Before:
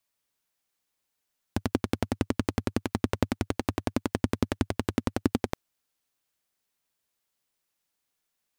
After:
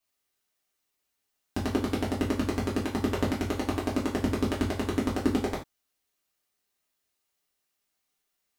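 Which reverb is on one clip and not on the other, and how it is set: non-linear reverb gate 0.11 s falling, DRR -6 dB; gain -5.5 dB

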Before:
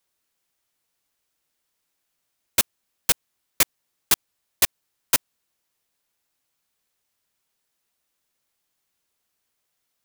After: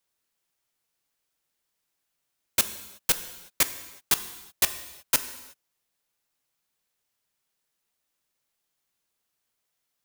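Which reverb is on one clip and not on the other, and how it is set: non-linear reverb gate 0.39 s falling, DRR 10 dB; gain -3.5 dB

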